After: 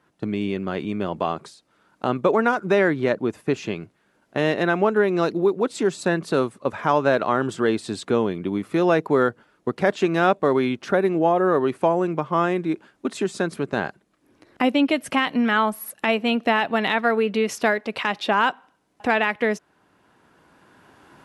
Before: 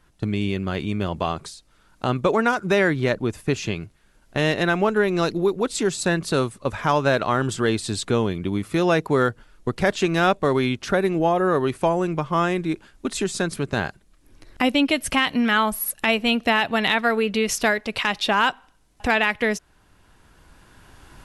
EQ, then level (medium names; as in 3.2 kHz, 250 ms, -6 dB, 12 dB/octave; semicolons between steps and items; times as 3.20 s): high-pass 200 Hz 12 dB/octave; treble shelf 2.6 kHz -11.5 dB; +2.0 dB